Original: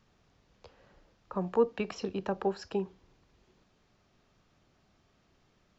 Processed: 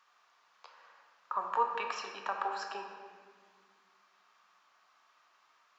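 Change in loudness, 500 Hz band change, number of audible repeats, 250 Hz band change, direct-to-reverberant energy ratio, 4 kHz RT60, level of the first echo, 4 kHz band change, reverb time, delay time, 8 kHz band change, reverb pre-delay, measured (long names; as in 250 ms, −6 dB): −2.5 dB, −12.0 dB, no echo audible, −21.5 dB, 2.0 dB, 1.3 s, no echo audible, +2.0 dB, 1.9 s, no echo audible, can't be measured, 3 ms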